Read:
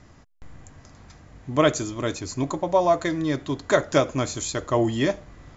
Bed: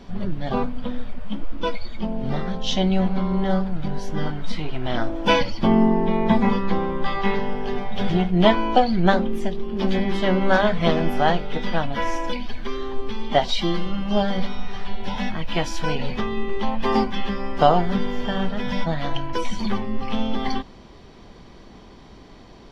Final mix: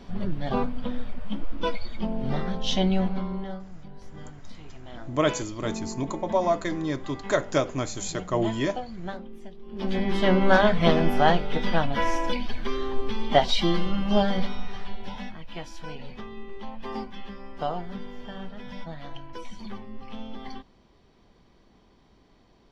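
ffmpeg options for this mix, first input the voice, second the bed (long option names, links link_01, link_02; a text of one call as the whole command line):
ffmpeg -i stem1.wav -i stem2.wav -filter_complex "[0:a]adelay=3600,volume=-4dB[link_01];[1:a]volume=15dB,afade=type=out:start_time=2.86:duration=0.73:silence=0.16788,afade=type=in:start_time=9.61:duration=0.65:silence=0.133352,afade=type=out:start_time=14.12:duration=1.26:silence=0.211349[link_02];[link_01][link_02]amix=inputs=2:normalize=0" out.wav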